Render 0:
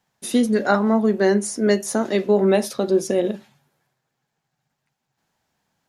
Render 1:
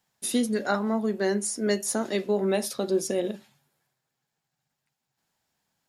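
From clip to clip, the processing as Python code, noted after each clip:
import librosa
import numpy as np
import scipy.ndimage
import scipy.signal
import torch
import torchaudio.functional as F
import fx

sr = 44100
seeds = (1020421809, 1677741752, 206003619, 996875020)

y = fx.high_shelf(x, sr, hz=3400.0, db=8.0)
y = fx.notch(y, sr, hz=6100.0, q=19.0)
y = fx.rider(y, sr, range_db=10, speed_s=0.5)
y = y * 10.0 ** (-7.5 / 20.0)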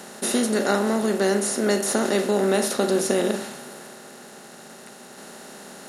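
y = fx.bin_compress(x, sr, power=0.4)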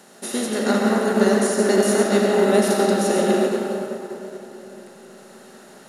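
y = fx.rev_freeverb(x, sr, rt60_s=4.7, hf_ratio=0.35, predelay_ms=50, drr_db=-3.0)
y = fx.upward_expand(y, sr, threshold_db=-30.0, expansion=1.5)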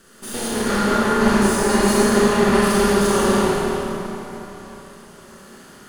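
y = fx.lower_of_two(x, sr, delay_ms=0.64)
y = fx.rev_schroeder(y, sr, rt60_s=1.6, comb_ms=27, drr_db=-4.5)
y = y * 10.0 ** (-2.5 / 20.0)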